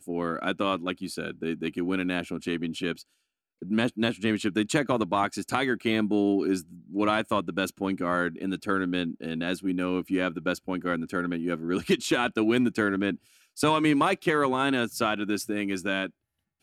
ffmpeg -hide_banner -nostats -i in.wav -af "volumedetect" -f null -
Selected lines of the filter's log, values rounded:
mean_volume: -27.7 dB
max_volume: -7.5 dB